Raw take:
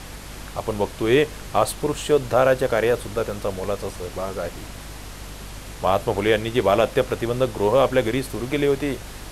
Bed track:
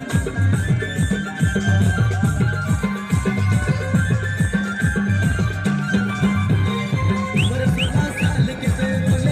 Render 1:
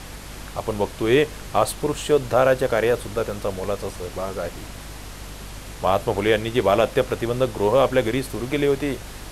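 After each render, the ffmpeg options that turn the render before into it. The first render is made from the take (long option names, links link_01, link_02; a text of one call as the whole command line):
ffmpeg -i in.wav -af anull out.wav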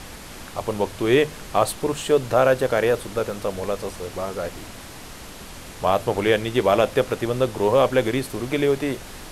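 ffmpeg -i in.wav -af "bandreject=frequency=50:width_type=h:width=4,bandreject=frequency=100:width_type=h:width=4,bandreject=frequency=150:width_type=h:width=4" out.wav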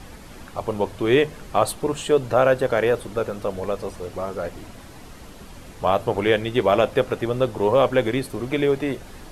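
ffmpeg -i in.wav -af "afftdn=noise_reduction=8:noise_floor=-39" out.wav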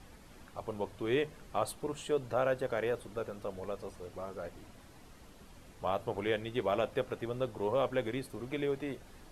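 ffmpeg -i in.wav -af "volume=-13.5dB" out.wav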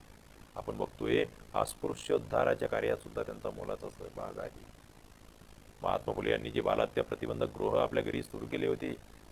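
ffmpeg -i in.wav -filter_complex "[0:a]aeval=exprs='val(0)*sin(2*PI*27*n/s)':channel_layout=same,asplit=2[link_01][link_02];[link_02]aeval=exprs='sgn(val(0))*max(abs(val(0))-0.00168,0)':channel_layout=same,volume=-3.5dB[link_03];[link_01][link_03]amix=inputs=2:normalize=0" out.wav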